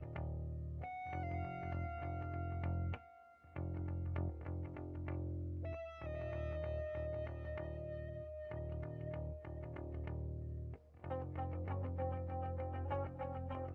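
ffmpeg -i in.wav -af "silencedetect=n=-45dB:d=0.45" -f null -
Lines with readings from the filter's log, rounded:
silence_start: 2.96
silence_end: 3.56 | silence_duration: 0.60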